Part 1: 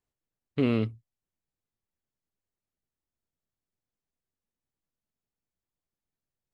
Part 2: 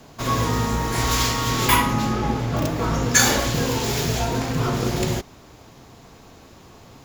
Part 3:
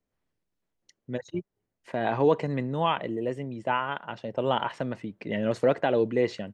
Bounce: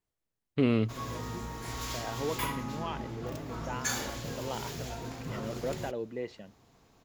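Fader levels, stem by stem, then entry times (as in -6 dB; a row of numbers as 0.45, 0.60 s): -0.5, -16.5, -12.5 dB; 0.00, 0.70, 0.00 s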